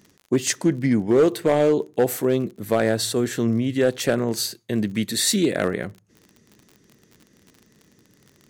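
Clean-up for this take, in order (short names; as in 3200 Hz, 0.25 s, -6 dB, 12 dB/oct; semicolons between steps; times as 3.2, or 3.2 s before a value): clip repair -11 dBFS; de-click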